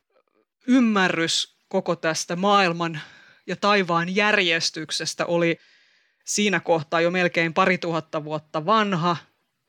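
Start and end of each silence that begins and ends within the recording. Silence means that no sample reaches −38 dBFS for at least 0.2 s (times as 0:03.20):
0:01.45–0:01.71
0:03.13–0:03.48
0:05.55–0:06.27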